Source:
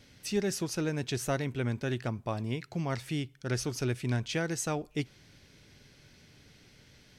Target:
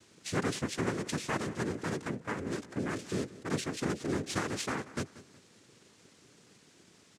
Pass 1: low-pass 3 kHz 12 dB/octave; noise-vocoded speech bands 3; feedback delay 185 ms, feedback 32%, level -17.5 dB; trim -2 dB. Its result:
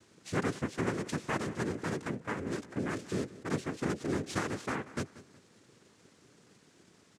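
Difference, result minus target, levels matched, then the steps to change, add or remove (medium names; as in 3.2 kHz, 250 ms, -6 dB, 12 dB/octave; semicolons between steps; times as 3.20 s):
4 kHz band -4.5 dB
remove: low-pass 3 kHz 12 dB/octave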